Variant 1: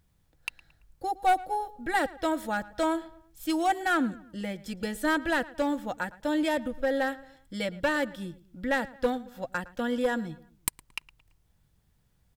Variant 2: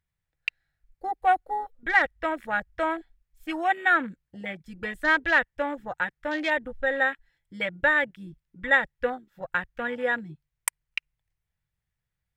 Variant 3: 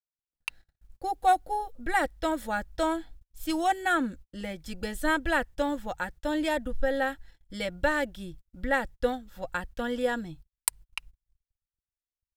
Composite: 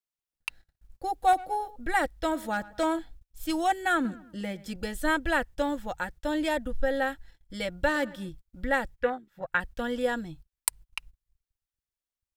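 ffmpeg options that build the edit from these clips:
-filter_complex "[0:a]asplit=4[a][b][c][d];[2:a]asplit=6[e][f][g][h][i][j];[e]atrim=end=1.332[k];[a]atrim=start=1.328:end=1.762[l];[f]atrim=start=1.758:end=2.352[m];[b]atrim=start=2.348:end=2.992[n];[g]atrim=start=2.988:end=4.052[o];[c]atrim=start=4.048:end=4.762[p];[h]atrim=start=4.758:end=7.892[q];[d]atrim=start=7.888:end=8.292[r];[i]atrim=start=8.288:end=8.982[s];[1:a]atrim=start=8.978:end=9.602[t];[j]atrim=start=9.598[u];[k][l]acrossfade=d=0.004:c1=hsin:c2=hsin[v];[v][m]acrossfade=d=0.004:c1=hsin:c2=hsin[w];[w][n]acrossfade=d=0.004:c1=hsin:c2=hsin[x];[x][o]acrossfade=d=0.004:c1=hsin:c2=hsin[y];[y][p]acrossfade=d=0.004:c1=hsin:c2=hsin[z];[z][q]acrossfade=d=0.004:c1=hsin:c2=hsin[aa];[aa][r]acrossfade=d=0.004:c1=hsin:c2=hsin[ab];[ab][s]acrossfade=d=0.004:c1=hsin:c2=hsin[ac];[ac][t]acrossfade=d=0.004:c1=hsin:c2=hsin[ad];[ad][u]acrossfade=d=0.004:c1=hsin:c2=hsin"

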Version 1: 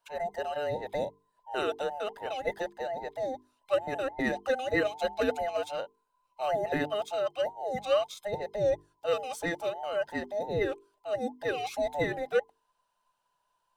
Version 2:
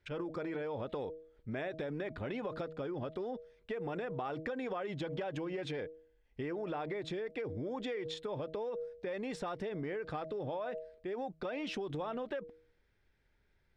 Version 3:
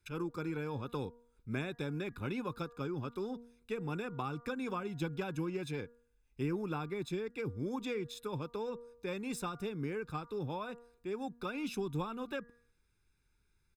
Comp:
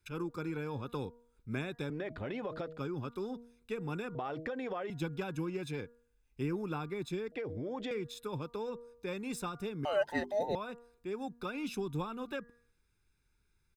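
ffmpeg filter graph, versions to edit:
-filter_complex "[1:a]asplit=3[a][b][c];[2:a]asplit=5[d][e][f][g][h];[d]atrim=end=1.902[i];[a]atrim=start=1.898:end=2.782[j];[e]atrim=start=2.778:end=4.152[k];[b]atrim=start=4.148:end=4.902[l];[f]atrim=start=4.898:end=7.322[m];[c]atrim=start=7.318:end=7.912[n];[g]atrim=start=7.908:end=9.852[o];[0:a]atrim=start=9.848:end=10.552[p];[h]atrim=start=10.548[q];[i][j]acrossfade=d=0.004:c1=hsin:c2=hsin[r];[r][k]acrossfade=d=0.004:c1=hsin:c2=hsin[s];[s][l]acrossfade=d=0.004:c1=hsin:c2=hsin[t];[t][m]acrossfade=d=0.004:c1=hsin:c2=hsin[u];[u][n]acrossfade=d=0.004:c1=hsin:c2=hsin[v];[v][o]acrossfade=d=0.004:c1=hsin:c2=hsin[w];[w][p]acrossfade=d=0.004:c1=hsin:c2=hsin[x];[x][q]acrossfade=d=0.004:c1=hsin:c2=hsin"

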